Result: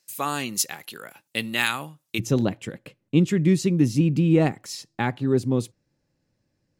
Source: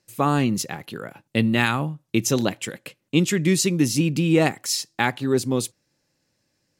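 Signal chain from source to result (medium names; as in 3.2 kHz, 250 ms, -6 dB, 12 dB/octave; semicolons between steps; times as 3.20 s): tilt EQ +3.5 dB/octave, from 2.18 s -2.5 dB/octave; trim -4.5 dB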